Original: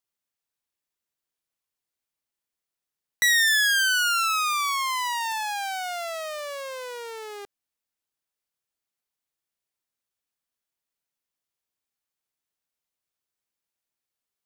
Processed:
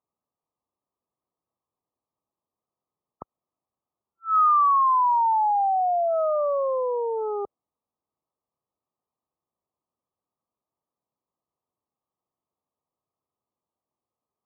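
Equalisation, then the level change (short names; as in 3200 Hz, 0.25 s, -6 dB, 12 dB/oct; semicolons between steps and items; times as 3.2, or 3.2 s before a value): HPF 68 Hz; brick-wall FIR low-pass 1300 Hz; dynamic EQ 530 Hz, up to +4 dB, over -49 dBFS, Q 1.1; +8.0 dB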